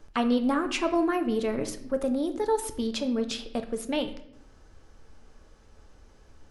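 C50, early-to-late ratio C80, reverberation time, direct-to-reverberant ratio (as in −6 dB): 11.5 dB, 14.0 dB, 0.70 s, 7.0 dB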